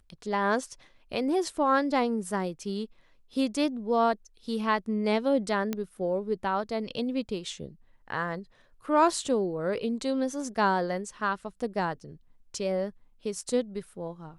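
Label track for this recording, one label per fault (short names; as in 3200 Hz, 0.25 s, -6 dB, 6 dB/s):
5.730000	5.730000	pop -16 dBFS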